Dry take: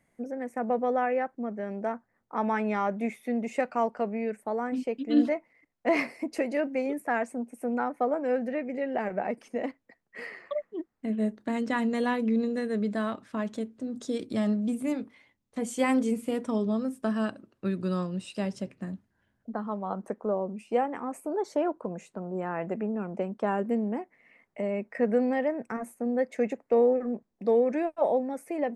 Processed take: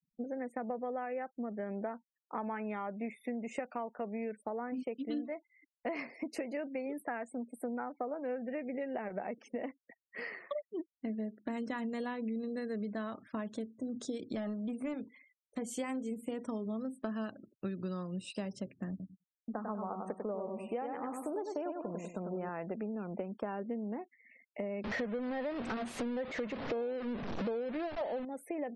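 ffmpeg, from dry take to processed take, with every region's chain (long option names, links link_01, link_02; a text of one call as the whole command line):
ffmpeg -i in.wav -filter_complex "[0:a]asettb=1/sr,asplit=3[link_01][link_02][link_03];[link_01]atrim=end=14.354[link_04];[link_02]atrim=start=14.35:end=14.94,asetpts=PTS-STARTPTS,afade=type=in:duration=0.004:curve=qsin,afade=type=out:start_time=0.586:duration=0.004:curve=qsin,highshelf=frequency=3800:gain=-4,asplit=2[link_05][link_06];[link_06]highpass=frequency=720:poles=1,volume=11dB,asoftclip=type=tanh:threshold=-18.5dB[link_07];[link_05][link_07]amix=inputs=2:normalize=0,lowpass=frequency=3000:poles=1,volume=-6dB[link_08];[link_03]atrim=start=14.936[link_09];[link_04][link_08]acrossfade=duration=0.004:curve1=hsin:curve2=qsin[link_10];[link_10][link_09]acrossfade=duration=0.004:curve1=qsin:curve2=hsin,asettb=1/sr,asplit=3[link_11][link_12][link_13];[link_11]atrim=end=18.904[link_14];[link_12]atrim=start=18.9:end=22.49,asetpts=PTS-STARTPTS,afade=type=in:duration=0.004:curve=qsin,afade=type=out:start_time=3.586:duration=0.004:curve=qsin,aecho=1:1:97|194|291|388|485:0.531|0.202|0.0767|0.0291|0.0111,atrim=end_sample=158319,agate=range=-33dB:threshold=-46dB:ratio=3:release=100:detection=peak[link_15];[link_13]atrim=start=22.486[link_16];[link_14][link_15]acrossfade=duration=0.004:curve1=hsin:curve2=qsin[link_17];[link_17][link_16]acrossfade=duration=0.004:curve1=qsin:curve2=hsin,asettb=1/sr,asplit=3[link_18][link_19][link_20];[link_18]atrim=end=24.844[link_21];[link_19]atrim=start=24.84:end=28.25,asetpts=PTS-STARTPTS,afade=type=in:duration=0.004:curve=qsin,afade=type=out:start_time=3.406:duration=0.004:curve=qsin,aeval=exprs='val(0)+0.5*0.0447*sgn(val(0))':channel_layout=same,lowpass=4200[link_22];[link_20]atrim=start=28.246[link_23];[link_21][link_22]acrossfade=duration=0.004:curve1=hsin:curve2=qsin[link_24];[link_24][link_23]acrossfade=duration=0.004:curve1=qsin:curve2=hsin,acompressor=threshold=-33dB:ratio=8,afftfilt=real='re*gte(hypot(re,im),0.002)':imag='im*gte(hypot(re,im),0.002)':win_size=1024:overlap=0.75,volume=-1.5dB" out.wav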